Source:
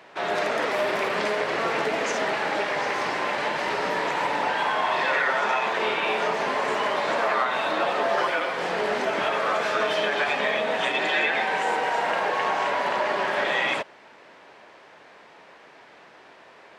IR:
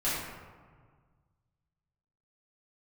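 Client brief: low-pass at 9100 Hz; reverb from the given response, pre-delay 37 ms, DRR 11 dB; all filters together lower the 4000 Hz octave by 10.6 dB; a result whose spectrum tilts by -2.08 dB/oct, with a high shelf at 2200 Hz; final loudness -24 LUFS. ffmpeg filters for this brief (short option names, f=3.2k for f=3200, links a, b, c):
-filter_complex "[0:a]lowpass=9.1k,highshelf=f=2.2k:g=-7.5,equalizer=f=4k:t=o:g=-7.5,asplit=2[a][b];[1:a]atrim=start_sample=2205,adelay=37[c];[b][c]afir=irnorm=-1:irlink=0,volume=-20dB[d];[a][d]amix=inputs=2:normalize=0,volume=2.5dB"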